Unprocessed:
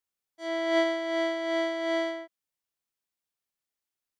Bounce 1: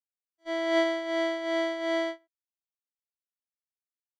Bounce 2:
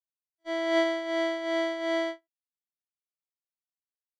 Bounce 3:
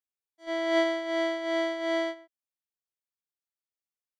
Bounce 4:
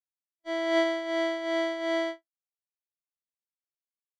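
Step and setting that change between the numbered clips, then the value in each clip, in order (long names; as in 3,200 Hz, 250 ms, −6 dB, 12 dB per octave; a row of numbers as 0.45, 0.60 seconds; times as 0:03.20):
noise gate, range: −26, −38, −11, −57 decibels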